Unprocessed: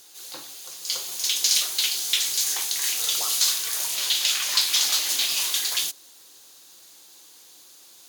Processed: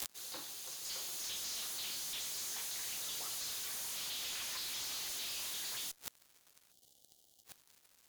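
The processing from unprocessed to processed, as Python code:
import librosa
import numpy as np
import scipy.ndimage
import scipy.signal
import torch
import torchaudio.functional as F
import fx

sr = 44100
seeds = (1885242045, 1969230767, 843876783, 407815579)

y = fx.fuzz(x, sr, gain_db=42.0, gate_db=-44.0)
y = fx.gate_flip(y, sr, shuts_db=-19.0, range_db=-28)
y = fx.spec_box(y, sr, start_s=6.72, length_s=0.73, low_hz=840.0, high_hz=2800.0, gain_db=-17)
y = F.gain(torch.from_numpy(y), 1.0).numpy()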